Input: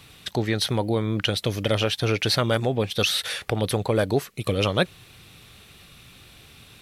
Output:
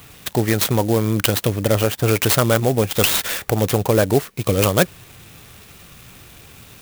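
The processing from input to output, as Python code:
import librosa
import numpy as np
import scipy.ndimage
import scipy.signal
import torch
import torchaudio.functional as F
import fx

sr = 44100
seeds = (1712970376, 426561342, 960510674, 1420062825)

y = fx.peak_eq(x, sr, hz=6600.0, db=-12.0, octaves=1.8, at=(1.47, 2.08))
y = fx.clock_jitter(y, sr, seeds[0], jitter_ms=0.058)
y = y * librosa.db_to_amplitude(6.0)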